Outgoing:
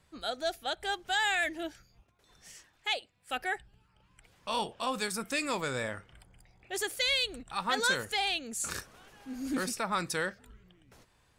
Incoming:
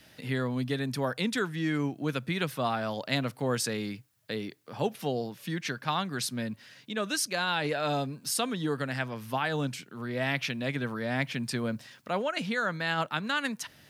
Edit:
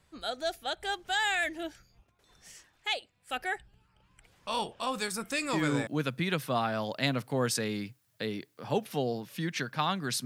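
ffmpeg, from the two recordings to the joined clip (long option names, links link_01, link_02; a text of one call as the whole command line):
ffmpeg -i cue0.wav -i cue1.wav -filter_complex "[0:a]apad=whole_dur=10.25,atrim=end=10.25,atrim=end=5.87,asetpts=PTS-STARTPTS[link_01];[1:a]atrim=start=1.62:end=6.34,asetpts=PTS-STARTPTS[link_02];[link_01][link_02]acrossfade=duration=0.34:curve1=log:curve2=log" out.wav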